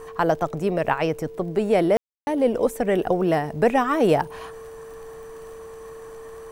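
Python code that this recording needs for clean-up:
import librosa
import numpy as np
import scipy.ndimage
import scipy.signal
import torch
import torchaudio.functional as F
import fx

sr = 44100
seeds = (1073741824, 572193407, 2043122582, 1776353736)

y = fx.fix_declick_ar(x, sr, threshold=6.5)
y = fx.notch(y, sr, hz=450.0, q=30.0)
y = fx.fix_ambience(y, sr, seeds[0], print_start_s=5.67, print_end_s=6.17, start_s=1.97, end_s=2.27)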